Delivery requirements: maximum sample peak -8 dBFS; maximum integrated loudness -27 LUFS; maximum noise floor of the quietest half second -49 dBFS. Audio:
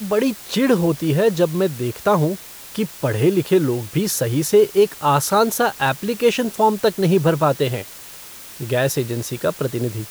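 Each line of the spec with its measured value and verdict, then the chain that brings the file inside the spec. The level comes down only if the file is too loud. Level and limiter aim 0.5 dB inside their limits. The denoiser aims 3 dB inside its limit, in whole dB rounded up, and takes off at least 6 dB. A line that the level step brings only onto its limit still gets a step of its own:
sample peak -5.0 dBFS: fail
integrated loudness -19.0 LUFS: fail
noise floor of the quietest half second -38 dBFS: fail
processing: denoiser 6 dB, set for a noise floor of -38 dBFS; gain -8.5 dB

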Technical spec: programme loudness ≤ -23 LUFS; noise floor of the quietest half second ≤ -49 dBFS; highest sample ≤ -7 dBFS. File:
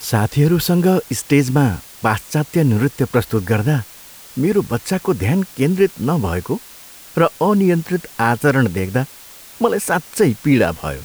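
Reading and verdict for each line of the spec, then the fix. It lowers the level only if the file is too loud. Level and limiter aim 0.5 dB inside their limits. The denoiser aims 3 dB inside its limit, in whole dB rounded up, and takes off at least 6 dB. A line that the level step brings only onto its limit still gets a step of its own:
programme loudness -17.5 LUFS: fail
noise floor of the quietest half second -40 dBFS: fail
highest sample -3.0 dBFS: fail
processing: denoiser 6 dB, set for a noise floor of -40 dBFS; gain -6 dB

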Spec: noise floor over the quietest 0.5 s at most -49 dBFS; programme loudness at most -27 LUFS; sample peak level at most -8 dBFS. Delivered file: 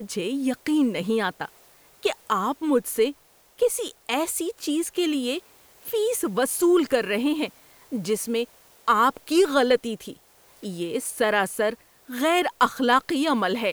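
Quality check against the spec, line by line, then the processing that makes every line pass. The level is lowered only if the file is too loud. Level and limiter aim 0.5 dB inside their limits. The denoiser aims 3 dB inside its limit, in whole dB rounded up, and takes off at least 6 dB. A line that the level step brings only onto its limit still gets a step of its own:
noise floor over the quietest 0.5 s -55 dBFS: OK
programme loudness -24.0 LUFS: fail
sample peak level -6.0 dBFS: fail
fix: gain -3.5 dB

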